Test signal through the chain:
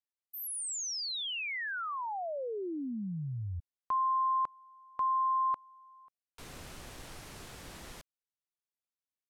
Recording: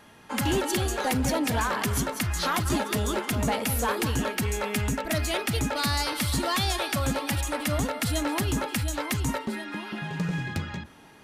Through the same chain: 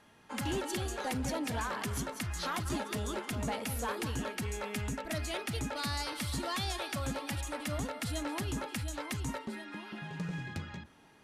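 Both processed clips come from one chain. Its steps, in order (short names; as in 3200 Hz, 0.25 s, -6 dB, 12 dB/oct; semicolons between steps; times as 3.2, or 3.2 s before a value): LPF 12000 Hz 12 dB/oct; gain -9 dB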